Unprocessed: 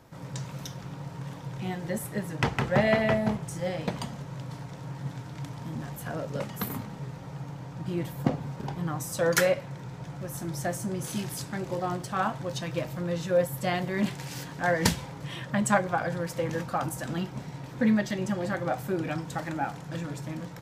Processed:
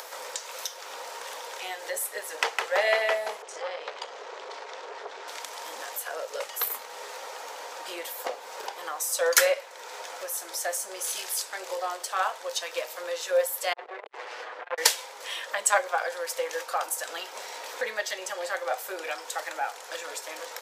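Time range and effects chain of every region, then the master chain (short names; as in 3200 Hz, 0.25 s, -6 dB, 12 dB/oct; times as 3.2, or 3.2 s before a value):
3.42–5.28 air absorption 140 m + core saturation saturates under 1300 Hz
13.73–14.78 minimum comb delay 8.1 ms + LPF 1700 Hz + core saturation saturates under 580 Hz
whole clip: elliptic high-pass 460 Hz, stop band 80 dB; high shelf 2500 Hz +10 dB; upward compressor, threshold -30 dBFS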